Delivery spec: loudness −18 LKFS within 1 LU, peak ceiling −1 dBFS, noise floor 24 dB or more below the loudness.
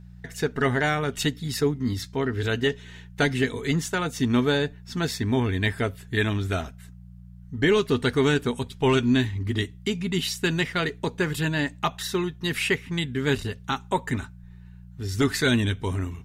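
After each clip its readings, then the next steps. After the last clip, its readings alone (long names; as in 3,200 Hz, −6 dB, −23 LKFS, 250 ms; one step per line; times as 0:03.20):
mains hum 60 Hz; hum harmonics up to 180 Hz; level of the hum −44 dBFS; integrated loudness −25.5 LKFS; sample peak −12.0 dBFS; target loudness −18.0 LKFS
→ hum removal 60 Hz, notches 3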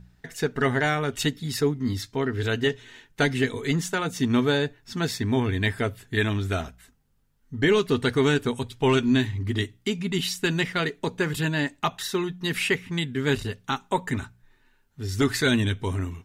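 mains hum none found; integrated loudness −25.5 LKFS; sample peak −11.5 dBFS; target loudness −18.0 LKFS
→ level +7.5 dB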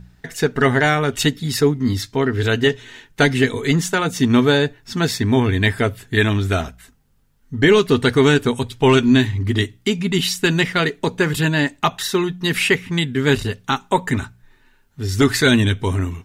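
integrated loudness −18.0 LKFS; sample peak −4.0 dBFS; background noise floor −57 dBFS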